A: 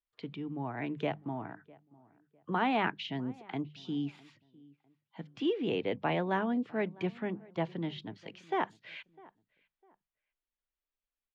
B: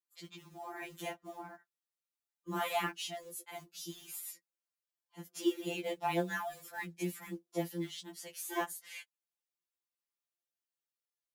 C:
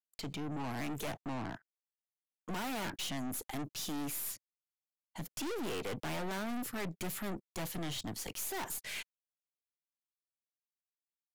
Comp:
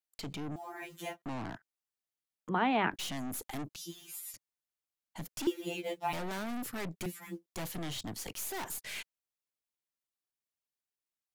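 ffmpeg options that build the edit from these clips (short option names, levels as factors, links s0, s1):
-filter_complex "[1:a]asplit=4[s0][s1][s2][s3];[2:a]asplit=6[s4][s5][s6][s7][s8][s9];[s4]atrim=end=0.562[s10];[s0]atrim=start=0.558:end=1.222[s11];[s5]atrim=start=1.218:end=2.492[s12];[0:a]atrim=start=2.488:end=2.912[s13];[s6]atrim=start=2.908:end=3.762[s14];[s1]atrim=start=3.758:end=4.342[s15];[s7]atrim=start=4.338:end=5.472[s16];[s2]atrim=start=5.468:end=6.132[s17];[s8]atrim=start=6.128:end=7.062[s18];[s3]atrim=start=7.058:end=7.462[s19];[s9]atrim=start=7.458[s20];[s10][s11]acrossfade=d=0.004:c1=hsin:c2=hsin[s21];[s21][s12]acrossfade=d=0.004:c1=hsin:c2=hsin[s22];[s22][s13]acrossfade=d=0.004:c1=hsin:c2=hsin[s23];[s23][s14]acrossfade=d=0.004:c1=hsin:c2=hsin[s24];[s24][s15]acrossfade=d=0.004:c1=hsin:c2=hsin[s25];[s25][s16]acrossfade=d=0.004:c1=hsin:c2=hsin[s26];[s26][s17]acrossfade=d=0.004:c1=hsin:c2=hsin[s27];[s27][s18]acrossfade=d=0.004:c1=hsin:c2=hsin[s28];[s28][s19]acrossfade=d=0.004:c1=hsin:c2=hsin[s29];[s29][s20]acrossfade=d=0.004:c1=hsin:c2=hsin"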